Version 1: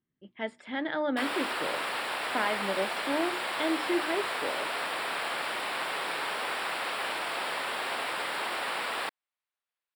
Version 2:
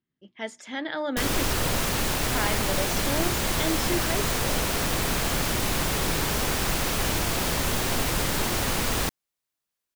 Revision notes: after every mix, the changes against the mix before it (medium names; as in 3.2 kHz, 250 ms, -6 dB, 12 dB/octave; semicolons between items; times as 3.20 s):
background: remove high-pass 710 Hz 12 dB/octave; master: remove boxcar filter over 7 samples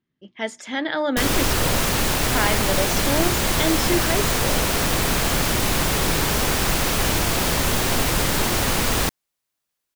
speech +6.5 dB; background +5.0 dB